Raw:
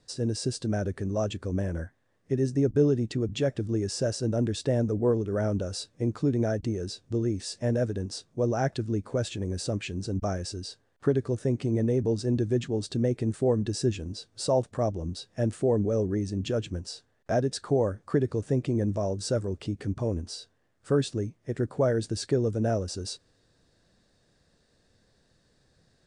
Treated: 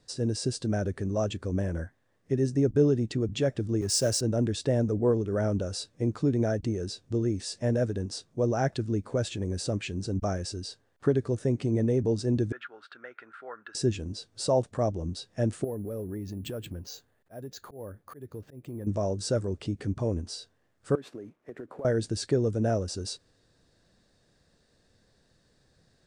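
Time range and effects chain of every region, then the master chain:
3.81–4.21 G.711 law mismatch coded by mu + high shelf 5000 Hz +11 dB + three-band expander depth 70%
12.52–13.75 resonant high-pass 1400 Hz, resonance Q 13 + air absorption 480 m
15.64–18.87 auto swell 0.612 s + compressor 3:1, threshold -34 dBFS + careless resampling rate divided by 4×, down filtered, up hold
20.95–21.85 CVSD 64 kbps + three-band isolator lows -20 dB, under 220 Hz, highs -16 dB, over 2500 Hz + compressor 8:1, threshold -36 dBFS
whole clip: dry

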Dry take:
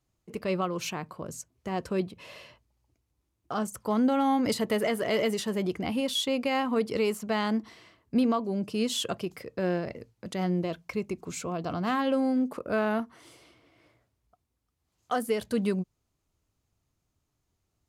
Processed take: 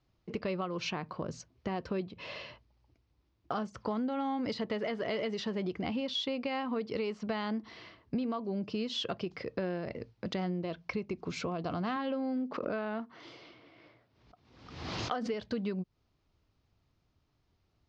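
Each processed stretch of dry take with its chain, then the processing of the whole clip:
11.96–15.34 BPF 120–6400 Hz + backwards sustainer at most 65 dB/s
whole clip: steep low-pass 5300 Hz 36 dB/oct; compressor 6:1, threshold -36 dBFS; gain +4 dB

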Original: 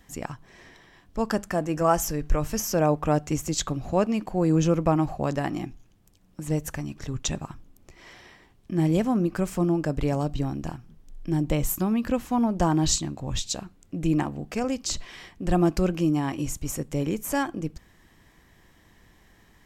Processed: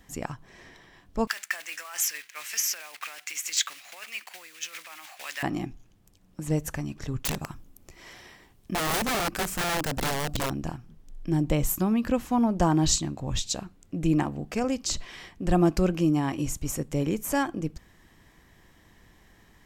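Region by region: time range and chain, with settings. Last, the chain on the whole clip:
1.27–5.43 block floating point 5-bit + negative-ratio compressor -26 dBFS + resonant high-pass 2100 Hz, resonance Q 2.4
7.25–10.5 high shelf 7800 Hz +10.5 dB + wrapped overs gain 22 dB
whole clip: dry

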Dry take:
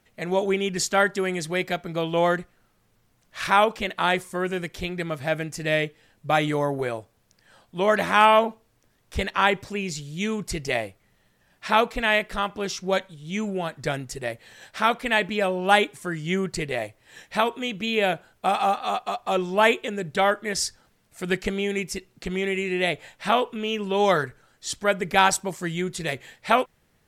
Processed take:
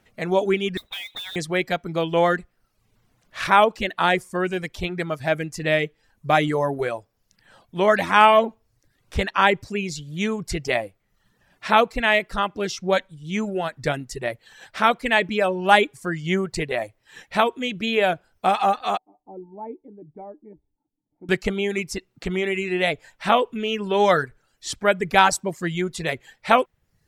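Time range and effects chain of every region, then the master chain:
0.77–1.36 compressor 16:1, threshold -31 dBFS + inverted band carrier 3900 Hz + modulation noise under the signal 11 dB
18.97–21.29 vocal tract filter u + resonator 150 Hz, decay 0.16 s
whole clip: reverb removal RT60 0.64 s; high shelf 5500 Hz -6 dB; gain +3.5 dB

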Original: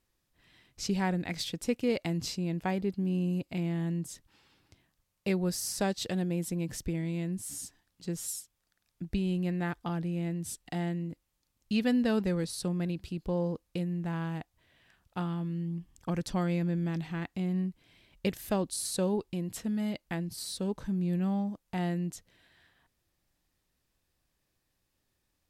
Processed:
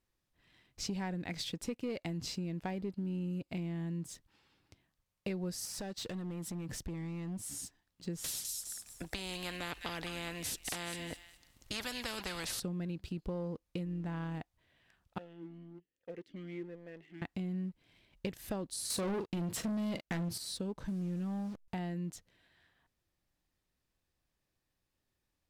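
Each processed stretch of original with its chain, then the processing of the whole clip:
5.65–7.39 compressor 12:1, threshold -34 dBFS + hard clip -36 dBFS
8.24–12.6 thin delay 0.206 s, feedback 31%, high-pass 3000 Hz, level -9 dB + spectral compressor 4:1
13.85–14.4 Bessel low-pass 11000 Hz + AM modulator 130 Hz, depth 15%
15.18–17.22 self-modulated delay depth 0.088 ms + vowel sweep e-i 1.2 Hz
18.9–20.38 HPF 72 Hz 6 dB/oct + doubler 41 ms -12 dB + sample leveller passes 3
20.88–21.68 delta modulation 64 kbps, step -46.5 dBFS + backlash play -40 dBFS
whole clip: high shelf 6400 Hz -5 dB; sample leveller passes 1; compressor 4:1, threshold -33 dBFS; gain -3 dB

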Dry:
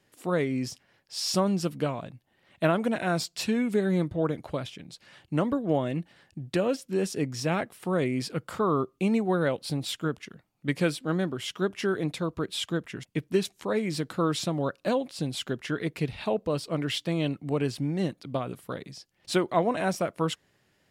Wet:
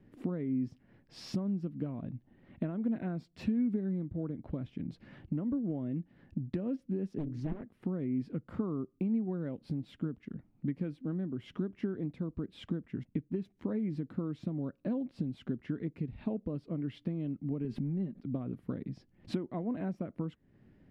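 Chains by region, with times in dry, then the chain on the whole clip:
7.18–7.63 notches 50/100/150/200/250/300/350/400 Hz + Doppler distortion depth 0.98 ms
17.64–18.24 notch 630 Hz, Q 19 + comb 5 ms, depth 55% + backwards sustainer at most 28 dB/s
whole clip: tilt -4.5 dB/oct; compressor 6:1, threshold -34 dBFS; graphic EQ 250/2000/8000 Hz +11/+5/-6 dB; gain -5.5 dB

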